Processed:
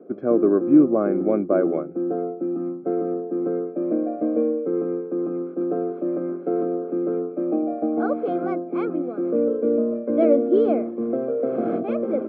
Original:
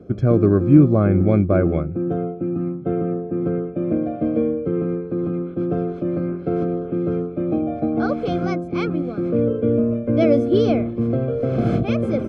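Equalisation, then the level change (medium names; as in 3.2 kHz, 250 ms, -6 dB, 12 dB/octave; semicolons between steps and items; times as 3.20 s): high-pass 260 Hz 24 dB/octave; low-pass 1.2 kHz 12 dB/octave; 0.0 dB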